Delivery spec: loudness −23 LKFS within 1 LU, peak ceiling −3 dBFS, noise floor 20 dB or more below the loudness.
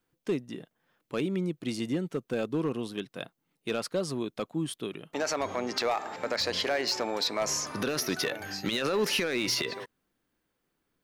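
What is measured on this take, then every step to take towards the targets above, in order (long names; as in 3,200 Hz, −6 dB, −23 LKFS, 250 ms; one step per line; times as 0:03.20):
share of clipped samples 0.7%; peaks flattened at −21.5 dBFS; integrated loudness −31.0 LKFS; sample peak −21.5 dBFS; target loudness −23.0 LKFS
→ clipped peaks rebuilt −21.5 dBFS
level +8 dB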